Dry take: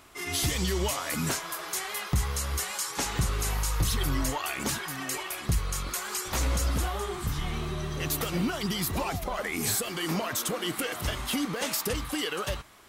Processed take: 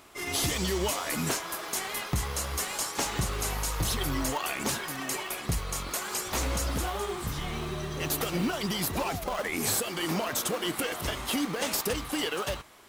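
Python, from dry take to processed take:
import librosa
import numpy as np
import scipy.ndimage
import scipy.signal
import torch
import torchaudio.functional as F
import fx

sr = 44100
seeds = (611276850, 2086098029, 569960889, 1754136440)

p1 = fx.sample_hold(x, sr, seeds[0], rate_hz=2100.0, jitter_pct=20)
p2 = x + (p1 * 10.0 ** (-8.0 / 20.0))
y = fx.low_shelf(p2, sr, hz=180.0, db=-8.5)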